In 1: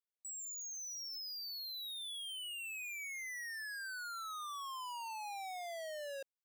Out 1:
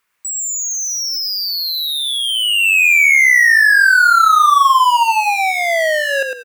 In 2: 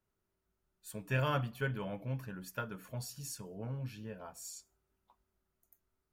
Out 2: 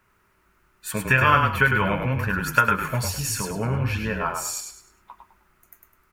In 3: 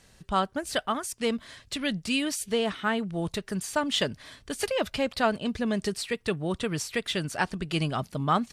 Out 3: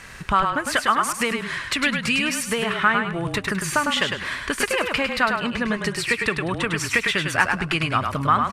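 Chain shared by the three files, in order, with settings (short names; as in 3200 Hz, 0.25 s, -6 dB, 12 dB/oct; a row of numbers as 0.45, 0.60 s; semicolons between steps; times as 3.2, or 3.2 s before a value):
compressor 5:1, threshold -37 dBFS; band shelf 1600 Hz +10.5 dB; on a send: frequency-shifting echo 0.103 s, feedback 31%, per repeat -31 Hz, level -5 dB; on the sum: normalise peaks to -3 dBFS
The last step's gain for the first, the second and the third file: +22.5, +16.0, +12.5 dB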